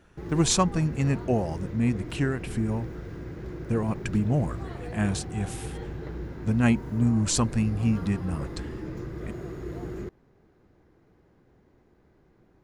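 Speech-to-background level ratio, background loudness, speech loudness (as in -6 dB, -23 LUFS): 10.5 dB, -37.5 LUFS, -27.0 LUFS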